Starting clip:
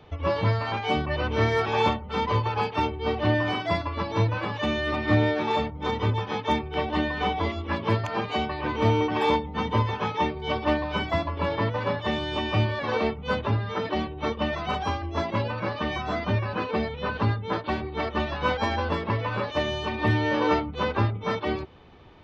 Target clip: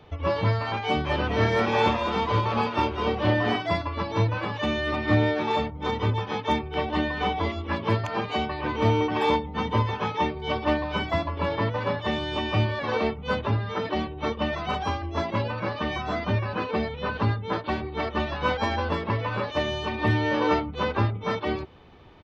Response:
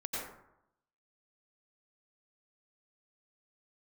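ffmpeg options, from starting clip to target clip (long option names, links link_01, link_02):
-filter_complex "[0:a]asplit=3[link_01][link_02][link_03];[link_01]afade=type=out:start_time=1.04:duration=0.02[link_04];[link_02]asplit=5[link_05][link_06][link_07][link_08][link_09];[link_06]adelay=205,afreqshift=120,volume=-6dB[link_10];[link_07]adelay=410,afreqshift=240,volume=-16.2dB[link_11];[link_08]adelay=615,afreqshift=360,volume=-26.3dB[link_12];[link_09]adelay=820,afreqshift=480,volume=-36.5dB[link_13];[link_05][link_10][link_11][link_12][link_13]amix=inputs=5:normalize=0,afade=type=in:start_time=1.04:duration=0.02,afade=type=out:start_time=3.56:duration=0.02[link_14];[link_03]afade=type=in:start_time=3.56:duration=0.02[link_15];[link_04][link_14][link_15]amix=inputs=3:normalize=0"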